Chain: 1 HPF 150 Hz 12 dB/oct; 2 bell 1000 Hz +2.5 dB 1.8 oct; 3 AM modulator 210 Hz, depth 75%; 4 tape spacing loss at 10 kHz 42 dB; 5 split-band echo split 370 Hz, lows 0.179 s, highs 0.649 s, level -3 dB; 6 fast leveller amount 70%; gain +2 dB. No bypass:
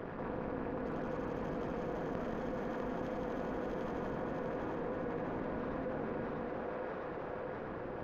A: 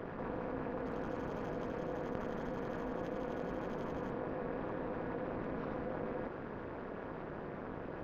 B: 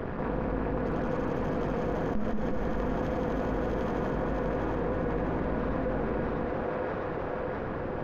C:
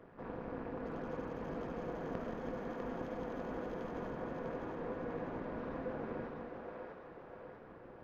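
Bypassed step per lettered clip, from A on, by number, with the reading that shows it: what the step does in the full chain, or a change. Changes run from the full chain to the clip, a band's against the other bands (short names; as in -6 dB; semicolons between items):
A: 5, momentary loudness spread change +2 LU; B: 1, 125 Hz band +4.0 dB; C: 6, crest factor change +3.0 dB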